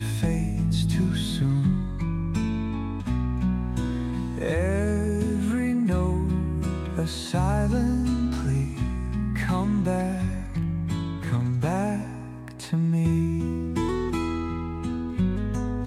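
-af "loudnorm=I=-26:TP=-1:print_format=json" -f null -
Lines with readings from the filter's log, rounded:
"input_i" : "-26.4",
"input_tp" : "-13.4",
"input_lra" : "1.6",
"input_thresh" : "-36.5",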